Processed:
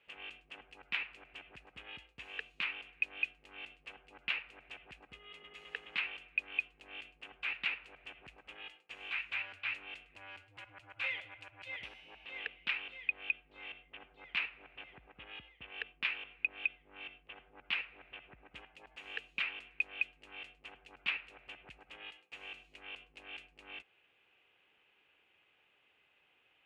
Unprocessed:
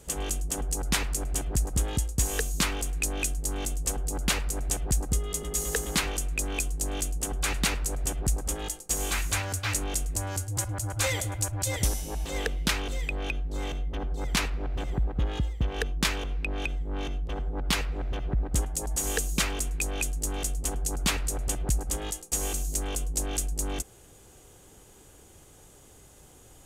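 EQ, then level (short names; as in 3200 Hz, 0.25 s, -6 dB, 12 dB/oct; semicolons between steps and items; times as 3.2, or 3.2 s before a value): band-pass 2600 Hz, Q 5.3; air absorption 470 m; +8.0 dB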